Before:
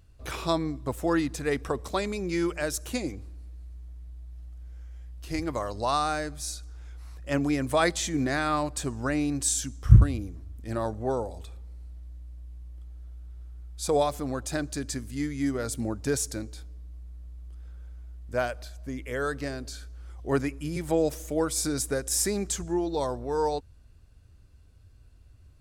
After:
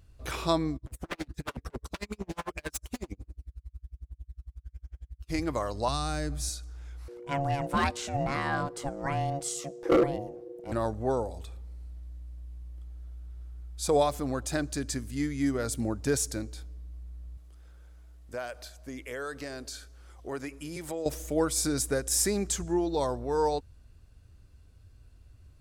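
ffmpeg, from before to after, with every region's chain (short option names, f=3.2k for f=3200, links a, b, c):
-filter_complex "[0:a]asettb=1/sr,asplit=3[a][b][c];[a]atrim=end=0.764[d];[b]atrim=start=0.76:end=5.32,asetpts=PTS-STARTPTS,afade=t=in:d=0.004:c=qsin,afade=t=out:st=4.556:d=0.004:c=qsin,aphaser=in_gain=1:out_gain=1:delay=1:decay=0.46:speed=1.2:type=triangular,aeval=exprs='0.0531*(abs(mod(val(0)/0.0531+3,4)-2)-1)':c=same,aeval=exprs='val(0)*pow(10,-40*(0.5-0.5*cos(2*PI*11*n/s))/20)':c=same[e];[c]atrim=start=5.316[f];[d][e]acrossfade=d=0.004:c1=hsin:c2=qsin[g];[g][f]acrossfade=d=0.004:c1=qsin:c2=hsin,asettb=1/sr,asplit=3[h][i][j];[h]atrim=end=5.884[k];[i]atrim=start=5.88:end=6.49,asetpts=PTS-STARTPTS,afade=t=in:d=0.004:c=qsin,afade=t=out:st=0.606:d=0.004:c=qsin,lowshelf=f=440:g=7,acrossover=split=220|3000[l][m][n];[m]acompressor=threshold=-34dB:ratio=3:attack=3.2:release=140:knee=2.83:detection=peak[o];[l][o][n]amix=inputs=3:normalize=0[p];[j]atrim=start=6.486[q];[k][p]acrossfade=d=0.004:c1=hsin:c2=qsin[r];[r][q]acrossfade=d=0.004:c1=qsin:c2=hsin,asettb=1/sr,asplit=3[s][t][u];[s]atrim=end=7.084[v];[t]atrim=start=7.08:end=10.72,asetpts=PTS-STARTPTS,afade=t=in:d=0.004:c=qsin,afade=t=out:st=3.636:d=0.004:c=qsin,highshelf=f=3.9k:g=-7.5,aeval=exprs='val(0)*sin(2*PI*420*n/s)':c=same,asoftclip=type=hard:threshold=-17.5dB[w];[u]atrim=start=10.716[x];[v][w]acrossfade=d=0.004:c1=hsin:c2=qsin[y];[y][x]acrossfade=d=0.004:c1=qsin:c2=hsin,asettb=1/sr,asplit=3[z][aa][ab];[z]atrim=end=17.374[ac];[aa]atrim=start=17.37:end=21.06,asetpts=PTS-STARTPTS,afade=t=in:d=0.004:c=qsin,afade=t=out:st=3.686:d=0.004:c=qsin,bass=f=250:g=-9,treble=f=4k:g=2,acompressor=threshold=-35dB:ratio=2.5:attack=3.2:release=140:knee=1:detection=peak[ad];[ab]atrim=start=21.056[ae];[ac][ad]acrossfade=d=0.004:c1=hsin:c2=qsin[af];[af][ae]acrossfade=d=0.004:c1=qsin:c2=hsin"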